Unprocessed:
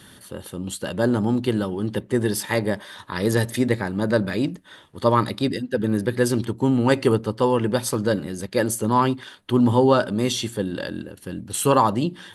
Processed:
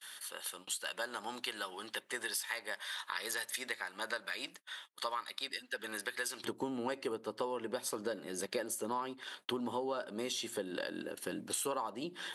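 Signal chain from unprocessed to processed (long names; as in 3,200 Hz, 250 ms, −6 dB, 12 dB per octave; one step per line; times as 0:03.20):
high-pass filter 1,300 Hz 12 dB per octave, from 0:06.44 390 Hz
noise gate −52 dBFS, range −31 dB
downward compressor 8 to 1, threshold −36 dBFS, peak gain reduction 22 dB
level +1 dB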